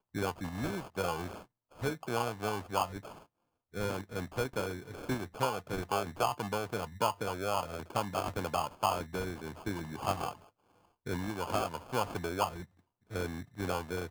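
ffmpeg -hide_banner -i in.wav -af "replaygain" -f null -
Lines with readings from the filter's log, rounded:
track_gain = +15.6 dB
track_peak = 0.127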